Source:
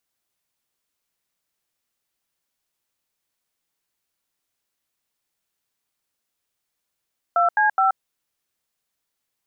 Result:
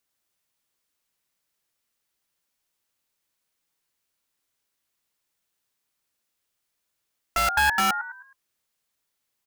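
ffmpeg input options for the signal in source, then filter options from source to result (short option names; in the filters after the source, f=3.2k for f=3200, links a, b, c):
-f lavfi -i "aevalsrc='0.133*clip(min(mod(t,0.21),0.128-mod(t,0.21))/0.002,0,1)*(eq(floor(t/0.21),0)*(sin(2*PI*697*mod(t,0.21))+sin(2*PI*1336*mod(t,0.21)))+eq(floor(t/0.21),1)*(sin(2*PI*852*mod(t,0.21))+sin(2*PI*1633*mod(t,0.21)))+eq(floor(t/0.21),2)*(sin(2*PI*770*mod(t,0.21))+sin(2*PI*1336*mod(t,0.21))))':d=0.63:s=44100"
-filter_complex "[0:a]bandreject=f=730:w=23,acrossover=split=920[a][b];[a]aeval=exprs='(mod(13.3*val(0)+1,2)-1)/13.3':c=same[c];[b]asplit=5[d][e][f][g][h];[e]adelay=105,afreqshift=74,volume=-7dB[i];[f]adelay=210,afreqshift=148,volume=-15.6dB[j];[g]adelay=315,afreqshift=222,volume=-24.3dB[k];[h]adelay=420,afreqshift=296,volume=-32.9dB[l];[d][i][j][k][l]amix=inputs=5:normalize=0[m];[c][m]amix=inputs=2:normalize=0"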